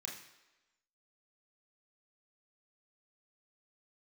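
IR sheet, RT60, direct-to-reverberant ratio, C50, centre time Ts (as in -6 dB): 1.1 s, -2.0 dB, 6.0 dB, 38 ms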